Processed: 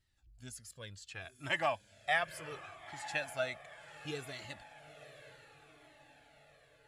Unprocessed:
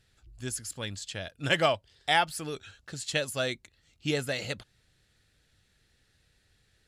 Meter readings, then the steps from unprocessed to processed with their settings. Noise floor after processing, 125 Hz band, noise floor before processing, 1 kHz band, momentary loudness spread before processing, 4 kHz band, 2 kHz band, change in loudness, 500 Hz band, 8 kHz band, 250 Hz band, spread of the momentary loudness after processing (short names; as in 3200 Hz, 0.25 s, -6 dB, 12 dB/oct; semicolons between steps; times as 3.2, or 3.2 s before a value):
-66 dBFS, -12.5 dB, -70 dBFS, -7.5 dB, 14 LU, -12.0 dB, -5.0 dB, -8.0 dB, -8.5 dB, -12.5 dB, -13.5 dB, 21 LU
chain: spectral gain 1.1–3.83, 580–2700 Hz +7 dB; diffused feedback echo 0.925 s, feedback 54%, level -14.5 dB; cascading flanger falling 0.68 Hz; gain -8 dB